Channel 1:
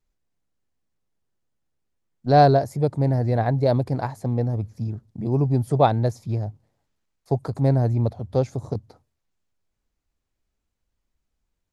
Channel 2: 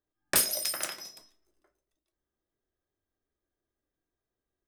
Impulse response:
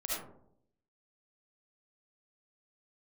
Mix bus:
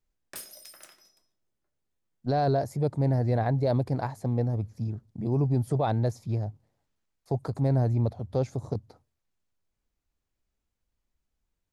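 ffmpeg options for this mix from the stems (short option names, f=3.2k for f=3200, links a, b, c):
-filter_complex "[0:a]volume=-3.5dB[a];[1:a]volume=-17.5dB,asplit=2[b][c];[c]volume=-18dB[d];[2:a]atrim=start_sample=2205[e];[d][e]afir=irnorm=-1:irlink=0[f];[a][b][f]amix=inputs=3:normalize=0,alimiter=limit=-18dB:level=0:latency=1:release=13"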